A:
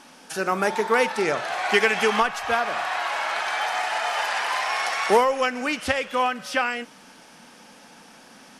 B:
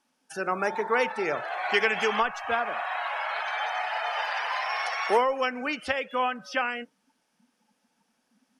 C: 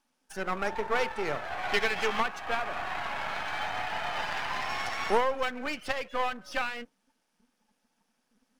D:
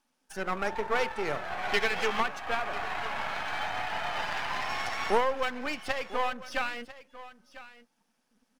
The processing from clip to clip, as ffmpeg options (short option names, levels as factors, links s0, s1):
-filter_complex "[0:a]afftdn=nr=22:nf=-34,highshelf=f=9600:g=7.5,acrossover=split=330[s0][s1];[s0]alimiter=level_in=2.37:limit=0.0631:level=0:latency=1,volume=0.422[s2];[s2][s1]amix=inputs=2:normalize=0,volume=0.631"
-af "aeval=exprs='if(lt(val(0),0),0.251*val(0),val(0))':c=same"
-af "aecho=1:1:997:0.15"